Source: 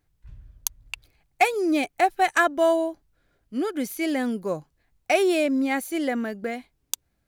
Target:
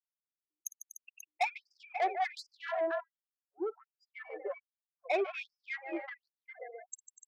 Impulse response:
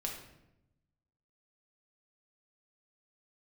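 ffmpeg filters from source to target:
-af "afftfilt=real='re*gte(hypot(re,im),0.158)':imag='im*gte(hypot(re,im),0.158)':win_size=1024:overlap=0.75,aecho=1:1:54|148|244|296|537:0.112|0.266|0.168|0.224|0.224,aeval=exprs='val(0)+0.00178*(sin(2*PI*60*n/s)+sin(2*PI*2*60*n/s)/2+sin(2*PI*3*60*n/s)/3+sin(2*PI*4*60*n/s)/4+sin(2*PI*5*60*n/s)/5)':c=same,asoftclip=type=tanh:threshold=-18dB,afftfilt=real='re*gte(b*sr/1024,310*pow(4800/310,0.5+0.5*sin(2*PI*1.3*pts/sr)))':imag='im*gte(b*sr/1024,310*pow(4800/310,0.5+0.5*sin(2*PI*1.3*pts/sr)))':win_size=1024:overlap=0.75,volume=-6dB"

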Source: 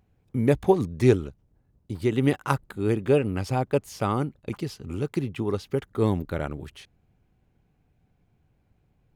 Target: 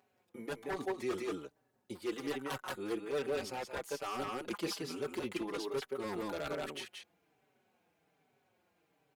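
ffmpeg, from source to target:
-filter_complex "[0:a]highpass=420,aecho=1:1:178:0.531,areverse,acompressor=threshold=-34dB:ratio=8,areverse,aeval=exprs='0.0251*(abs(mod(val(0)/0.0251+3,4)-2)-1)':c=same,asplit=2[a][b];[b]adelay=4.8,afreqshift=-1.2[c];[a][c]amix=inputs=2:normalize=1,volume=5dB"

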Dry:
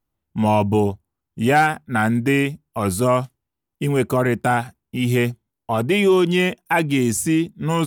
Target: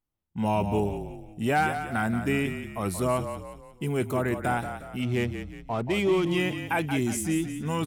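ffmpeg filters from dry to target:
-filter_complex "[0:a]asettb=1/sr,asplit=3[a][b][c];[a]atrim=end=5.024[d];[b]atrim=start=5.02:end=6.27,asetpts=PTS-STARTPTS,afade=t=in:d=0.004:c=qsin,afade=t=out:st=1.246:d=0.004:c=qsin,adynamicsmooth=sensitivity=3:basefreq=1.8k[e];[c]atrim=start=6.266[f];[d][e]acrossfade=d=0.004:c1=hsin:c2=qsin[g];[g][f]acrossfade=d=0.004:c1=qsin:c2=hsin,asplit=6[h][i][j][k][l][m];[i]adelay=179,afreqshift=-34,volume=-9dB[n];[j]adelay=358,afreqshift=-68,volume=-16.3dB[o];[k]adelay=537,afreqshift=-102,volume=-23.7dB[p];[l]adelay=716,afreqshift=-136,volume=-31dB[q];[m]adelay=895,afreqshift=-170,volume=-38.3dB[r];[h][n][o][p][q][r]amix=inputs=6:normalize=0,volume=-8.5dB"

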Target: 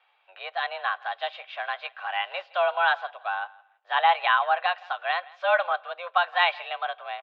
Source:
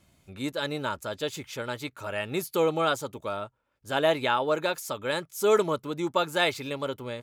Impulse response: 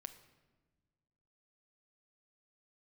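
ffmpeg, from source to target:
-filter_complex "[0:a]asettb=1/sr,asplit=3[a][b][c];[a]atrim=end=0.944[d];[b]atrim=start=0.94:end=2.46,asetpts=PTS-STARTPTS,afade=t=in:d=0.004:c=qsin,afade=t=out:st=1.516:d=0.004:c=qsin,acrusher=bits=4:mode=log:mix=0:aa=0.000001[e];[c]atrim=start=2.456[f];[d][e]acrossfade=d=0.004:c1=hsin:c2=qsin[g];[g][f]acrossfade=d=0.004:c1=qsin:c2=hsin,highpass=f=520:t=q:w=0.5412,highpass=f=520:t=q:w=1.307,lowpass=f=3.2k:t=q:w=0.5176,lowpass=f=3.2k:t=q:w=0.7071,lowpass=f=3.2k:t=q:w=1.932,afreqshift=180,aecho=1:1:166|332:0.0708|0.0149,asplit=2[h][i];[1:a]atrim=start_sample=2205,asetrate=61740,aresample=44100[j];[i][j]afir=irnorm=-1:irlink=0,volume=-4.5dB[k];[h][k]amix=inputs=2:normalize=0,volume=2.5dB"

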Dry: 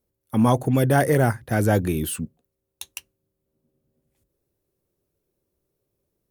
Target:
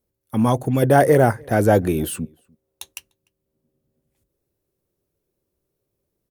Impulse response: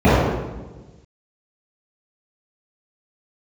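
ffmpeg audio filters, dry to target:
-filter_complex "[0:a]asettb=1/sr,asplit=3[a][b][c];[a]atrim=end=0.824[d];[b]atrim=start=0.82:end=2.93,asetpts=PTS-STARTPTS,afade=t=in:d=0.004:c=qsin,afade=t=out:st=2.106:d=0.004:c=qsin,equalizer=f=570:w=0.67:g=7[e];[c]atrim=start=2.926[f];[d][e]acrossfade=d=0.004:c1=hsin:c2=qsin[g];[g][f]acrossfade=d=0.004:c1=qsin:c2=hsin,asplit=2[h][i];[i]adelay=297.4,volume=-29dB,highshelf=f=4k:g=-6.69[j];[h][j]amix=inputs=2:normalize=0"

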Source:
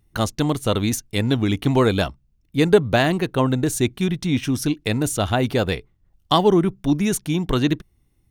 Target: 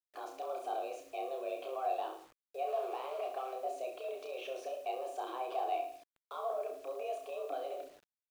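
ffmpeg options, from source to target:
-filter_complex "[0:a]aresample=22050,aresample=44100,alimiter=level_in=3.5dB:limit=-24dB:level=0:latency=1:release=14,volume=-3.5dB,asettb=1/sr,asplit=3[a][b][c];[a]atrim=end=2.674[d];[b]atrim=start=2.67:end=3.53,asetpts=PTS-STARTPTS,afade=t=in:d=0.004:c=qsin,afade=t=out:st=0.856:d=0.004:c=qsin,acrusher=bits=3:mode=log:mix=0:aa=0.000001[e];[c]atrim=start=3.526[f];[d][e]acrossfade=d=0.004:c1=hsin:c2=qsin[g];[g][f]acrossfade=d=0.004:c1=qsin:c2=hsin,afreqshift=260,asplit=3[h][i][j];[h]bandpass=f=730:t=q:w=8,volume=0dB[k];[i]bandpass=f=1.09k:t=q:w=8,volume=-6dB[l];[j]bandpass=f=2.44k:t=q:w=8,volume=-9dB[m];[k][l][m]amix=inputs=3:normalize=0,equalizer=f=66:t=o:w=0.45:g=-11.5,bandreject=f=50:t=h:w=6,bandreject=f=100:t=h:w=6,bandreject=f=150:t=h:w=6,bandreject=f=200:t=h:w=6,bandreject=f=250:t=h:w=6,bandreject=f=300:t=h:w=6,bandreject=f=350:t=h:w=6,aecho=1:1:30|66|109.2|161|223.2:0.631|0.398|0.251|0.158|0.1,acrusher=bits=10:mix=0:aa=0.000001,volume=4.5dB"

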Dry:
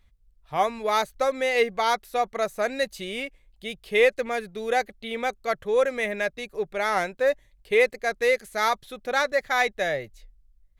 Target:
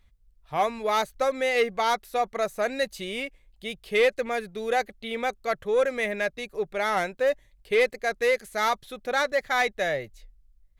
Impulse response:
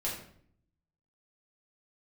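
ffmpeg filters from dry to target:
-af "asoftclip=type=tanh:threshold=-13.5dB"

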